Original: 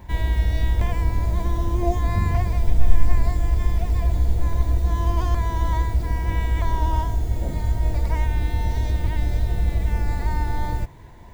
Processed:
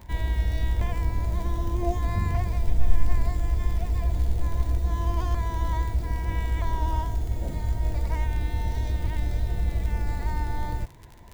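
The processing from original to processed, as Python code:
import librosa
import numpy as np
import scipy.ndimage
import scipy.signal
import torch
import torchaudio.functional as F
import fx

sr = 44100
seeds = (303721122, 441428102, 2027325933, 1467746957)

y = fx.dmg_crackle(x, sr, seeds[0], per_s=54.0, level_db=-29.0)
y = F.gain(torch.from_numpy(y), -4.5).numpy()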